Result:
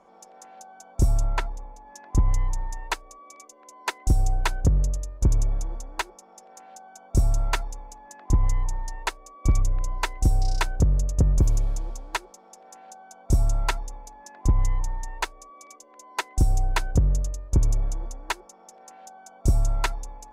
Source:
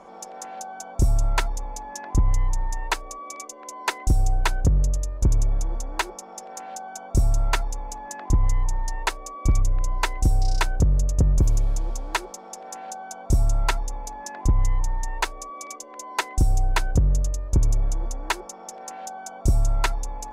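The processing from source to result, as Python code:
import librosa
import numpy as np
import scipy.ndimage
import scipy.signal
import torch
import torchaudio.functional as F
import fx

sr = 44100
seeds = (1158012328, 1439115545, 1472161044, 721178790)

y = fx.high_shelf(x, sr, hz=fx.line((1.23, 4300.0), (1.85, 2400.0)), db=-10.5, at=(1.23, 1.85), fade=0.02)
y = fx.upward_expand(y, sr, threshold_db=-35.0, expansion=1.5)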